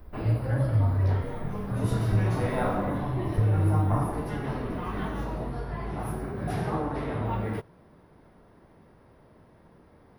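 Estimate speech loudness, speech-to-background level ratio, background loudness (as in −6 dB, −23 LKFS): −28.0 LKFS, 4.0 dB, −32.0 LKFS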